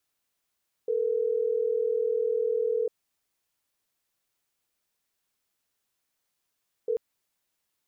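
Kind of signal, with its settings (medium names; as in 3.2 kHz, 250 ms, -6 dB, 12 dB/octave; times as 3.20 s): call progress tone ringback tone, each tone -26.5 dBFS 6.09 s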